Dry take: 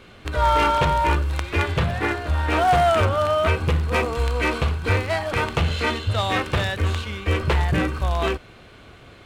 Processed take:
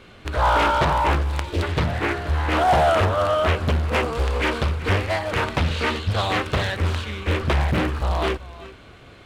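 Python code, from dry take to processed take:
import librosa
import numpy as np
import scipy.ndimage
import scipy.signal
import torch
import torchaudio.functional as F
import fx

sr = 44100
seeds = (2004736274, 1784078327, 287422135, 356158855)

y = fx.spec_box(x, sr, start_s=1.43, length_s=0.2, low_hz=650.0, high_hz=2800.0, gain_db=-13)
y = y + 10.0 ** (-17.5 / 20.0) * np.pad(y, (int(379 * sr / 1000.0), 0))[:len(y)]
y = fx.doppler_dist(y, sr, depth_ms=0.84)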